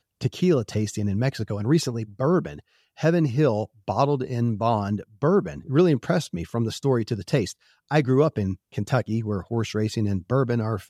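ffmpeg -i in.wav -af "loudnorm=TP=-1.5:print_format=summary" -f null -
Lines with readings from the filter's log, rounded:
Input Integrated:    -24.5 LUFS
Input True Peak:      -6.3 dBTP
Input LRA:             2.3 LU
Input Threshold:     -34.6 LUFS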